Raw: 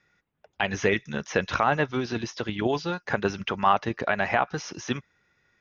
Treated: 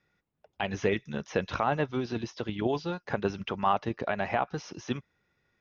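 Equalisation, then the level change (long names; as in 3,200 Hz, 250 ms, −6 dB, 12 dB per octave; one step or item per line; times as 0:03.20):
high-frequency loss of the air 95 metres
parametric band 1,700 Hz −5.5 dB 1.2 octaves
−2.5 dB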